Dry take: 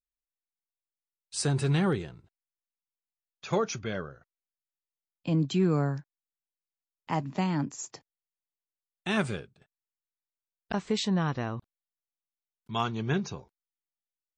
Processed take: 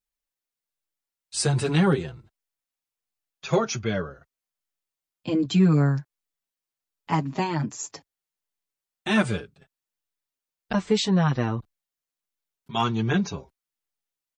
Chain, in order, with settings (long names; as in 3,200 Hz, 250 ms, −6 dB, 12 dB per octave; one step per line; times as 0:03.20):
barber-pole flanger 6.3 ms −1.3 Hz
level +8.5 dB